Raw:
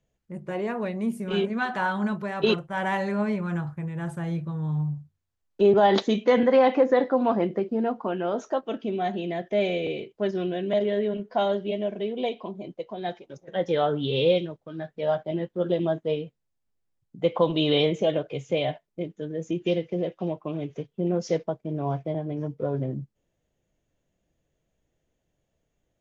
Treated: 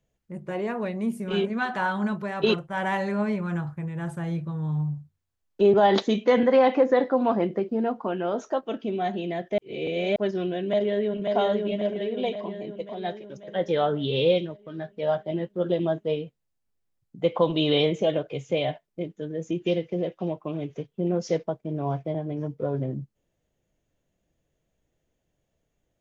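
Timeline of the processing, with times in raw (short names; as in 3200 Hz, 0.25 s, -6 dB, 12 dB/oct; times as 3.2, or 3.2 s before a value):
9.58–10.16 reverse
10.67–11.32 echo throw 0.54 s, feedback 60%, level -3 dB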